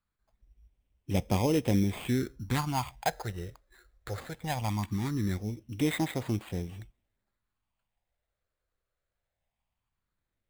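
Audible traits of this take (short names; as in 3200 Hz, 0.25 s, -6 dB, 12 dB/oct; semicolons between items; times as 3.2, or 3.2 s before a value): phasing stages 6, 0.2 Hz, lowest notch 230–1600 Hz; aliases and images of a low sample rate 5700 Hz, jitter 0%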